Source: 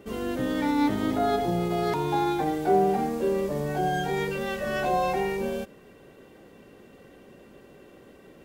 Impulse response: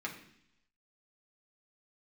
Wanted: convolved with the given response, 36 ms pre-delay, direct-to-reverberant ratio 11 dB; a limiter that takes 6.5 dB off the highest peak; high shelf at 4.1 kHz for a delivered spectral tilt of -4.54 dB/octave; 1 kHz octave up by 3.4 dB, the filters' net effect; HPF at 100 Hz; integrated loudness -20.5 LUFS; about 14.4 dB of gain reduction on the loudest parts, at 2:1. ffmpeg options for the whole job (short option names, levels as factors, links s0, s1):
-filter_complex "[0:a]highpass=100,equalizer=f=1000:t=o:g=5,highshelf=f=4100:g=5,acompressor=threshold=0.00708:ratio=2,alimiter=level_in=2.11:limit=0.0631:level=0:latency=1,volume=0.473,asplit=2[s0][s1];[1:a]atrim=start_sample=2205,adelay=36[s2];[s1][s2]afir=irnorm=-1:irlink=0,volume=0.224[s3];[s0][s3]amix=inputs=2:normalize=0,volume=8.91"